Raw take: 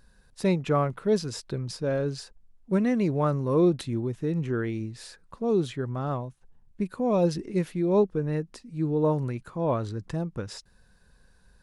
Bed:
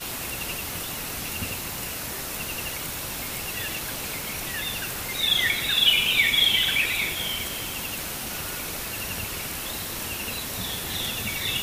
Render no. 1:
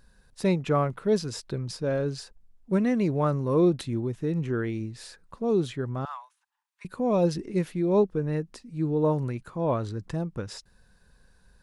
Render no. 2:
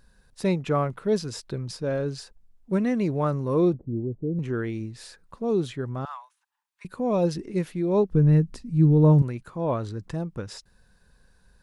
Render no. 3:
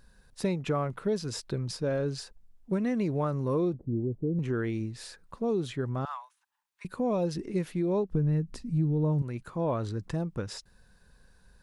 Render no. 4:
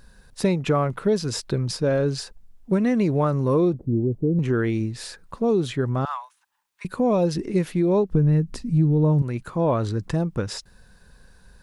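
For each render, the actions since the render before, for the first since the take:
6.05–6.85 s: elliptic high-pass 920 Hz, stop band 70 dB
3.74–4.39 s: inverse Chebyshev low-pass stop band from 3.2 kHz, stop band 80 dB; 8.10–9.22 s: tone controls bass +15 dB, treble +1 dB
compression 5:1, threshold -25 dBFS, peak gain reduction 11 dB
trim +8 dB

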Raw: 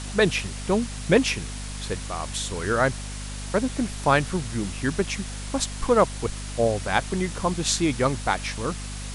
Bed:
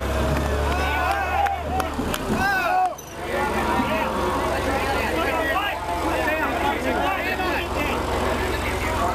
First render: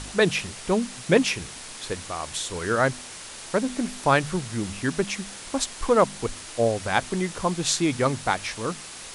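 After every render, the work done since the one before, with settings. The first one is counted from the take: de-hum 50 Hz, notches 5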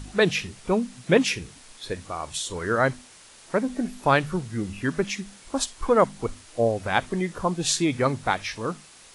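noise print and reduce 10 dB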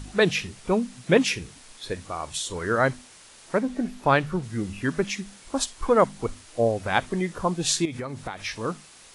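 3.58–4.42 s: treble shelf 7.6 kHz -> 5 kHz -8 dB; 7.85–8.45 s: compression 16:1, threshold -28 dBFS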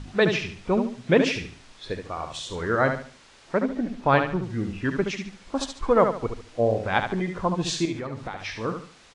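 distance through air 110 m; feedback delay 72 ms, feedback 31%, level -7 dB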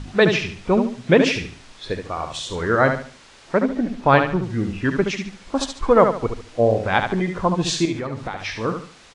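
trim +5 dB; peak limiter -2 dBFS, peak gain reduction 2 dB

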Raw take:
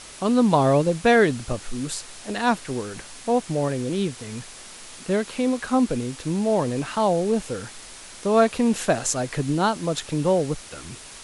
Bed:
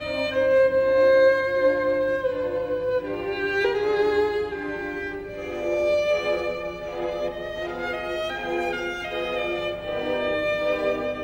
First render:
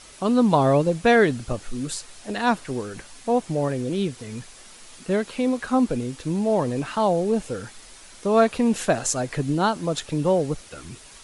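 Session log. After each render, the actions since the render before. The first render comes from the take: noise reduction 6 dB, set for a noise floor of -42 dBFS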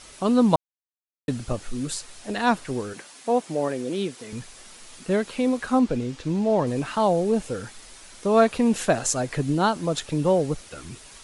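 0.56–1.28 s: mute; 2.93–4.33 s: high-pass 240 Hz; 5.79–6.67 s: low-pass 6.3 kHz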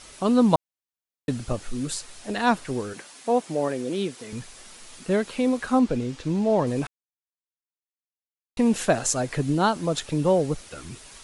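6.87–8.57 s: mute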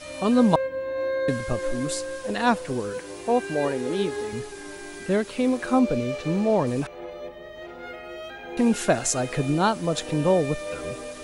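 add bed -9.5 dB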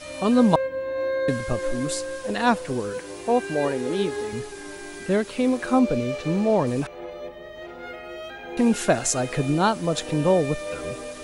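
trim +1 dB

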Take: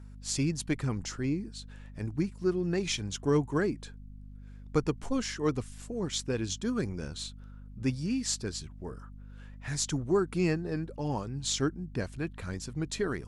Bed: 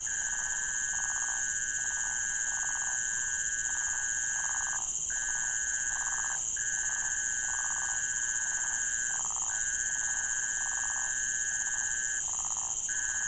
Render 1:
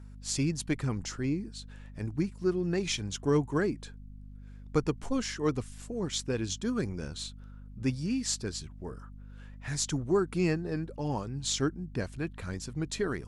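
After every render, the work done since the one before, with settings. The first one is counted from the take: no audible change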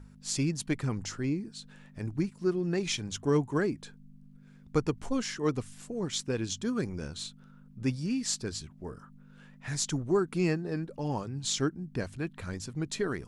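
de-hum 50 Hz, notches 2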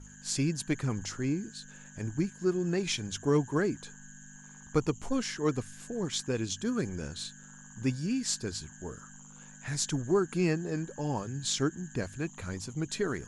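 add bed -21.5 dB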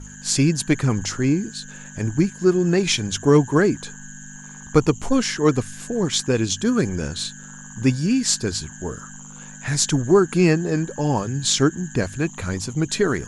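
trim +11.5 dB

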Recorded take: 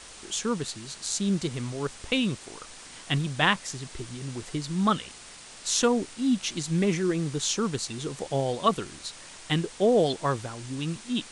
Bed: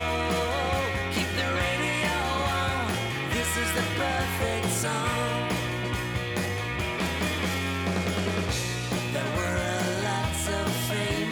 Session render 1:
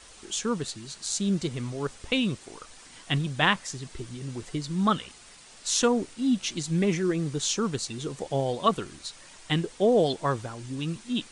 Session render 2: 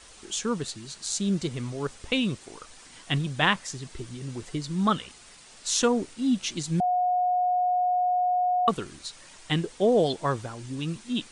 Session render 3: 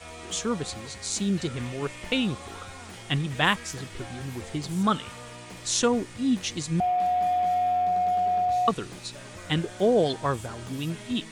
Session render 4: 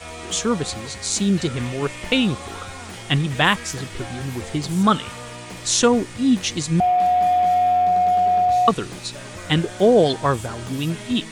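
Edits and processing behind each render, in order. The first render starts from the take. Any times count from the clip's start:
noise reduction 6 dB, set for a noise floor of -46 dBFS
6.80–8.68 s: bleep 724 Hz -21 dBFS
add bed -15.5 dB
trim +7 dB; peak limiter -3 dBFS, peak gain reduction 2.5 dB

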